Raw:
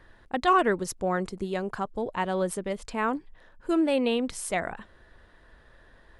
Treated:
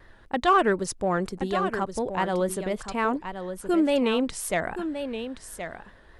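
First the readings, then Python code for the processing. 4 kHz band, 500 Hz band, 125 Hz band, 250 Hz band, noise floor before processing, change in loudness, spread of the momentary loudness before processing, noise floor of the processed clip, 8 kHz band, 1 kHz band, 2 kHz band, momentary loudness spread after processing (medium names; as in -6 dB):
+2.5 dB, +2.5 dB, +2.5 dB, +2.5 dB, -57 dBFS, +1.5 dB, 11 LU, -52 dBFS, +2.5 dB, +2.0 dB, +2.0 dB, 14 LU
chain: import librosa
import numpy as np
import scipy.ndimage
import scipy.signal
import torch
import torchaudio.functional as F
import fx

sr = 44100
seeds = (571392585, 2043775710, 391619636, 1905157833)

p1 = fx.vibrato(x, sr, rate_hz=4.1, depth_cents=79.0)
p2 = 10.0 ** (-22.0 / 20.0) * np.tanh(p1 / 10.0 ** (-22.0 / 20.0))
p3 = p1 + F.gain(torch.from_numpy(p2), -9.5).numpy()
y = p3 + 10.0 ** (-9.0 / 20.0) * np.pad(p3, (int(1073 * sr / 1000.0), 0))[:len(p3)]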